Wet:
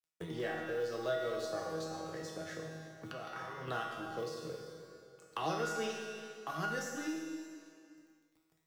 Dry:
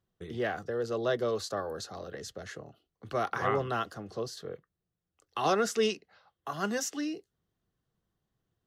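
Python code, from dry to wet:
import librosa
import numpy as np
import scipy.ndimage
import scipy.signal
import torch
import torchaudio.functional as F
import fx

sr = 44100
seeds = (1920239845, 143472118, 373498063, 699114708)

y = fx.law_mismatch(x, sr, coded='A')
y = fx.level_steps(y, sr, step_db=24, at=(3.12, 3.68))
y = fx.comb_fb(y, sr, f0_hz=160.0, decay_s=0.77, harmonics='all', damping=0.0, mix_pct=90)
y = y + 10.0 ** (-22.0 / 20.0) * np.pad(y, (int(340 * sr / 1000.0), 0))[:len(y)]
y = fx.rev_plate(y, sr, seeds[0], rt60_s=1.3, hf_ratio=0.9, predelay_ms=0, drr_db=1.5)
y = fx.band_squash(y, sr, depth_pct=70)
y = y * librosa.db_to_amplitude(8.5)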